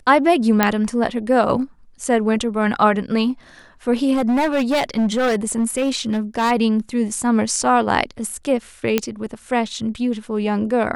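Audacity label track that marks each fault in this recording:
0.630000	0.630000	pop 0 dBFS
4.130000	6.520000	clipped -14.5 dBFS
8.980000	8.980000	pop -3 dBFS

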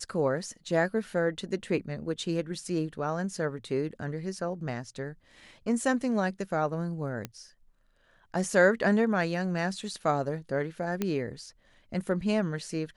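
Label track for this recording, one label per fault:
7.250000	7.250000	pop -19 dBFS
11.020000	11.020000	pop -15 dBFS

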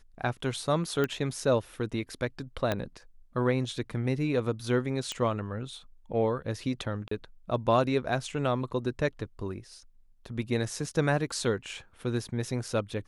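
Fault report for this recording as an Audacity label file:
1.040000	1.040000	pop -16 dBFS
2.720000	2.720000	pop -14 dBFS
5.120000	5.120000	pop -19 dBFS
7.080000	7.110000	gap 34 ms

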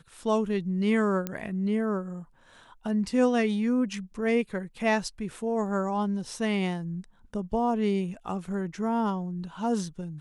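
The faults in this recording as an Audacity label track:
1.270000	1.270000	pop -16 dBFS

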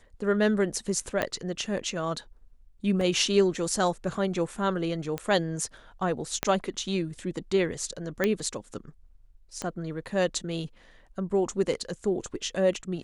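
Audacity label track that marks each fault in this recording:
1.220000	1.220000	pop -12 dBFS
3.010000	3.010000	gap 2.7 ms
5.180000	5.180000	pop -17 dBFS
6.430000	6.430000	pop -9 dBFS
8.240000	8.240000	pop -11 dBFS
9.620000	9.620000	pop -19 dBFS

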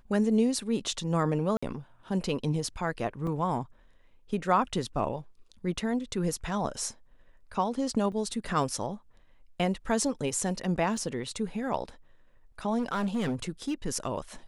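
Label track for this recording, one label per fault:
1.570000	1.620000	gap 55 ms
3.270000	3.270000	gap 2.9 ms
8.120000	8.120000	gap 4.3 ms
10.970000	10.970000	gap 2.3 ms
12.780000	13.740000	clipped -25.5 dBFS

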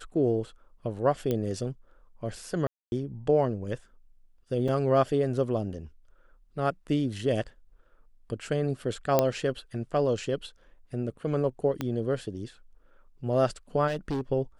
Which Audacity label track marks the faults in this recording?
1.310000	1.310000	pop -16 dBFS
2.670000	2.920000	gap 0.251 s
4.680000	4.680000	gap 4.3 ms
9.190000	9.190000	pop -8 dBFS
11.810000	11.810000	pop -16 dBFS
13.870000	14.210000	clipped -26 dBFS

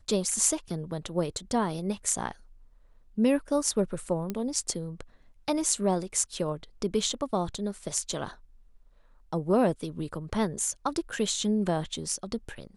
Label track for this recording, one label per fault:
4.300000	4.300000	pop -18 dBFS

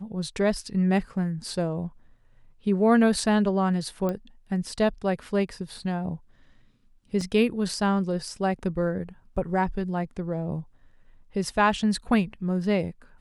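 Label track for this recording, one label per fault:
4.090000	4.090000	pop -17 dBFS
7.210000	7.210000	gap 3.5 ms

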